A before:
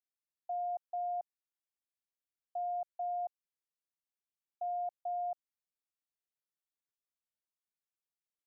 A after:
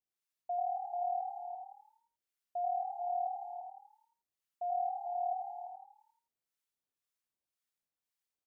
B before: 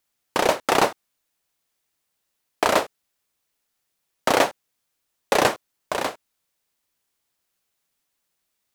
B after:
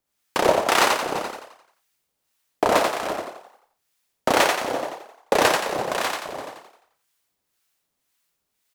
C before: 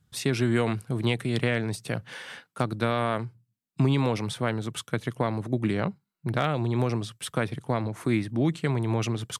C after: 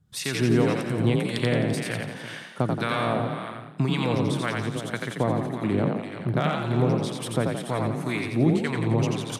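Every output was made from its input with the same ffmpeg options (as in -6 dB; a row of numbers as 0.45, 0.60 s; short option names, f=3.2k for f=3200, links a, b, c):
-filter_complex "[0:a]asplit=2[a][b];[b]aecho=0:1:340|426:0.316|0.119[c];[a][c]amix=inputs=2:normalize=0,acrossover=split=920[d][e];[d]aeval=exprs='val(0)*(1-0.7/2+0.7/2*cos(2*PI*1.9*n/s))':c=same[f];[e]aeval=exprs='val(0)*(1-0.7/2-0.7/2*cos(2*PI*1.9*n/s))':c=same[g];[f][g]amix=inputs=2:normalize=0,asplit=2[h][i];[i]asplit=6[j][k][l][m][n][o];[j]adelay=87,afreqshift=37,volume=-3.5dB[p];[k]adelay=174,afreqshift=74,volume=-10.2dB[q];[l]adelay=261,afreqshift=111,volume=-17dB[r];[m]adelay=348,afreqshift=148,volume=-23.7dB[s];[n]adelay=435,afreqshift=185,volume=-30.5dB[t];[o]adelay=522,afreqshift=222,volume=-37.2dB[u];[p][q][r][s][t][u]amix=inputs=6:normalize=0[v];[h][v]amix=inputs=2:normalize=0,volume=3dB"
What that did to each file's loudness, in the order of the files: +1.0, +0.5, +2.5 LU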